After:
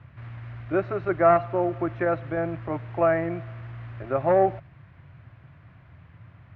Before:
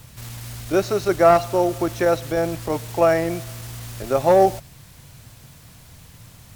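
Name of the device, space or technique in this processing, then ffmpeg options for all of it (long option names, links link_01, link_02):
bass cabinet: -af "highpass=79,equalizer=frequency=94:width_type=q:width=4:gain=4,equalizer=frequency=220:width_type=q:width=4:gain=-9,equalizer=frequency=460:width_type=q:width=4:gain=-9,equalizer=frequency=850:width_type=q:width=4:gain=-5,lowpass=frequency=2100:width=0.5412,lowpass=frequency=2100:width=1.3066,volume=-2dB"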